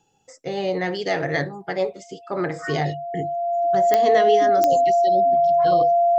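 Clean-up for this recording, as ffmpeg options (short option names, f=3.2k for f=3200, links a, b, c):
-af "adeclick=t=4,bandreject=f=690:w=30"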